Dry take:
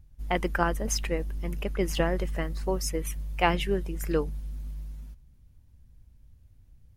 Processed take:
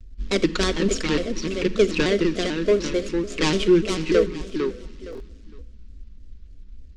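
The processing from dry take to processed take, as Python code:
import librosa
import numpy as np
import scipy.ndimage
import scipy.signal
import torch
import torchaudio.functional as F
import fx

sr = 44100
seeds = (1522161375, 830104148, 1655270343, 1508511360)

p1 = scipy.signal.medfilt(x, 25)
p2 = fx.peak_eq(p1, sr, hz=4500.0, db=7.0, octaves=1.7)
p3 = fx.hum_notches(p2, sr, base_hz=50, count=4)
p4 = fx.fold_sine(p3, sr, drive_db=9, ceiling_db=-10.5)
p5 = scipy.signal.sosfilt(scipy.signal.butter(4, 7600.0, 'lowpass', fs=sr, output='sos'), p4)
p6 = fx.fixed_phaser(p5, sr, hz=320.0, stages=4)
p7 = p6 + 0.36 * np.pad(p6, (int(4.9 * sr / 1000.0), 0))[:len(p6)]
p8 = p7 + fx.echo_feedback(p7, sr, ms=460, feedback_pct=22, wet_db=-6, dry=0)
p9 = fx.rev_schroeder(p8, sr, rt60_s=1.0, comb_ms=33, drr_db=15.0)
p10 = fx.buffer_glitch(p9, sr, at_s=(5.11,), block=1024, repeats=3)
y = fx.vibrato_shape(p10, sr, shape='square', rate_hz=3.4, depth_cents=160.0)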